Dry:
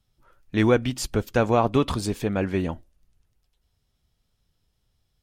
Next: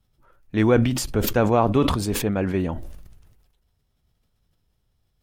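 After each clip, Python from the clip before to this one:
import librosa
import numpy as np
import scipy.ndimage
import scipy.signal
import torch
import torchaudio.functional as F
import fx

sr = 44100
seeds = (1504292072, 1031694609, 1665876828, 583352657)

y = fx.peak_eq(x, sr, hz=5400.0, db=-5.5, octaves=2.5)
y = fx.sustainer(y, sr, db_per_s=45.0)
y = y * librosa.db_to_amplitude(1.0)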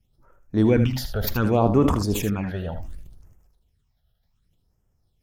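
y = fx.phaser_stages(x, sr, stages=8, low_hz=290.0, high_hz=4000.0, hz=0.67, feedback_pct=25)
y = y + 10.0 ** (-10.0 / 20.0) * np.pad(y, (int(78 * sr / 1000.0), 0))[:len(y)]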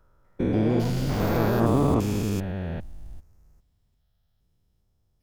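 y = fx.spec_steps(x, sr, hold_ms=400)
y = fx.echo_pitch(y, sr, ms=247, semitones=6, count=2, db_per_echo=-6.0)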